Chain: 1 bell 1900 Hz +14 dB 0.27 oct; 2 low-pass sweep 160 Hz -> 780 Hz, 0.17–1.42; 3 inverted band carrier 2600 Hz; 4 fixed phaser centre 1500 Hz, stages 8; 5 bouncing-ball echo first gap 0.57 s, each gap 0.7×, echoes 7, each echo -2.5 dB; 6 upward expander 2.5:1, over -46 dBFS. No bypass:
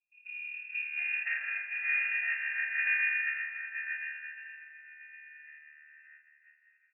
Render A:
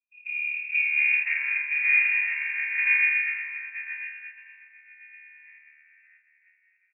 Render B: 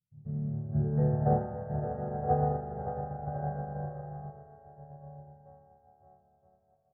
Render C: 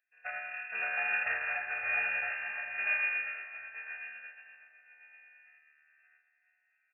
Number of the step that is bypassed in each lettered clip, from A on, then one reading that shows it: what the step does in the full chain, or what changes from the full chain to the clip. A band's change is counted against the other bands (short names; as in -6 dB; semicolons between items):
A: 4, momentary loudness spread change -7 LU; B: 3, crest factor change +1.5 dB; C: 2, momentary loudness spread change -8 LU